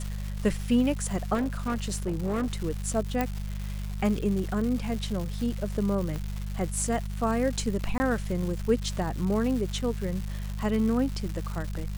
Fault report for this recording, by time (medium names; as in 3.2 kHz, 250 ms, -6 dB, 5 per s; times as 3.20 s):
crackle 360 per s -33 dBFS
hum 50 Hz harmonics 4 -33 dBFS
1.34–2.54 s: clipped -24 dBFS
3.21 s: pop -13 dBFS
6.16 s: pop -21 dBFS
7.98–8.00 s: dropout 20 ms